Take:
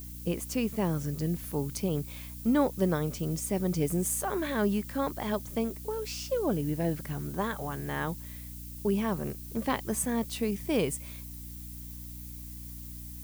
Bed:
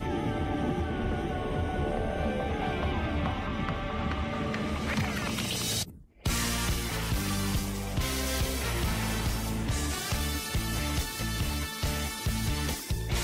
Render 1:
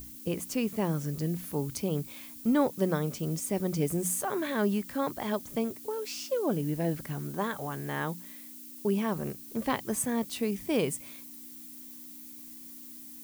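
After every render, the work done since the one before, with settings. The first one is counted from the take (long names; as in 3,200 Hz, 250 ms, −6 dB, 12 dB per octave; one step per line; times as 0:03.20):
mains-hum notches 60/120/180 Hz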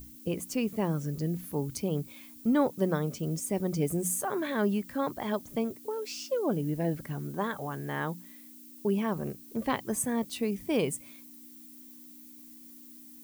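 broadband denoise 6 dB, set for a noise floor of −47 dBFS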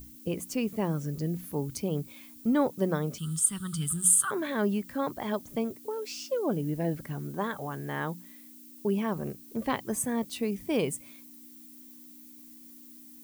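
0:03.18–0:04.31: drawn EQ curve 160 Hz 0 dB, 410 Hz −21 dB, 640 Hz −30 dB, 1,300 Hz +14 dB, 2,300 Hz −9 dB, 3,200 Hz +13 dB, 6,000 Hz −4 dB, 8,900 Hz +15 dB, 14,000 Hz −5 dB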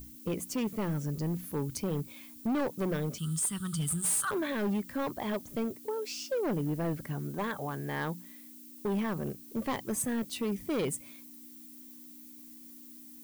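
hard clipping −27 dBFS, distortion −8 dB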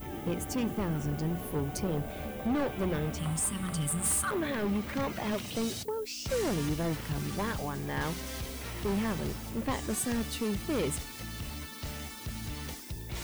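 mix in bed −9 dB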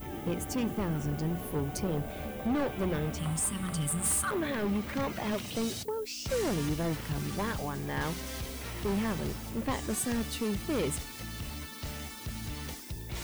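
no processing that can be heard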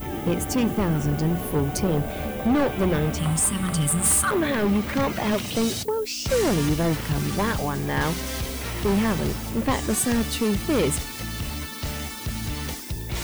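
level +9 dB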